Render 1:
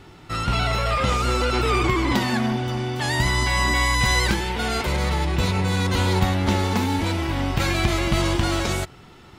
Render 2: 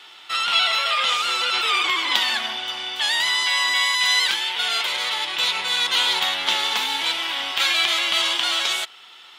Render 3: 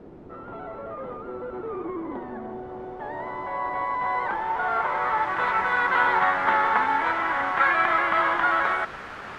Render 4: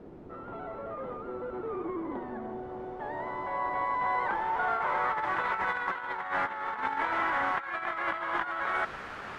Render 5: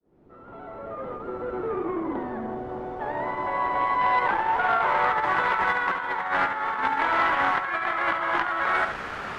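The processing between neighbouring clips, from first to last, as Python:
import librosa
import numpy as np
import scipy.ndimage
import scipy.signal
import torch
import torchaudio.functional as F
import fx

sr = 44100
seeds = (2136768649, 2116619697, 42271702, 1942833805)

y1 = scipy.signal.sosfilt(scipy.signal.butter(2, 1000.0, 'highpass', fs=sr, output='sos'), x)
y1 = fx.peak_eq(y1, sr, hz=3300.0, db=12.5, octaves=0.63)
y1 = fx.rider(y1, sr, range_db=4, speed_s=2.0)
y1 = y1 * librosa.db_to_amplitude(1.0)
y2 = fx.band_shelf(y1, sr, hz=4100.0, db=-15.5, octaves=1.7)
y2 = fx.quant_dither(y2, sr, seeds[0], bits=6, dither='triangular')
y2 = fx.filter_sweep_lowpass(y2, sr, from_hz=370.0, to_hz=1500.0, start_s=2.32, end_s=5.56, q=1.5)
y2 = y2 * librosa.db_to_amplitude(5.0)
y3 = fx.over_compress(y2, sr, threshold_db=-25.0, ratio=-0.5)
y3 = y3 * librosa.db_to_amplitude(-5.0)
y4 = fx.fade_in_head(y3, sr, length_s=1.53)
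y4 = y4 + 10.0 ** (-9.0 / 20.0) * np.pad(y4, (int(71 * sr / 1000.0), 0))[:len(y4)]
y4 = fx.transformer_sat(y4, sr, knee_hz=940.0)
y4 = y4 * librosa.db_to_amplitude(7.0)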